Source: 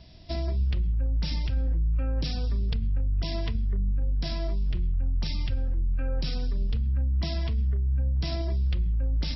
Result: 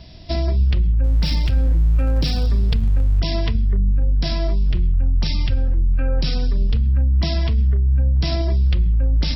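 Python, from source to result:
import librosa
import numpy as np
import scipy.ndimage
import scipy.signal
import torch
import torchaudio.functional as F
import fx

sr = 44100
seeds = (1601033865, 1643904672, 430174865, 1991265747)

y = fx.zero_step(x, sr, step_db=-42.5, at=(1.04, 3.2))
y = y * 10.0 ** (9.0 / 20.0)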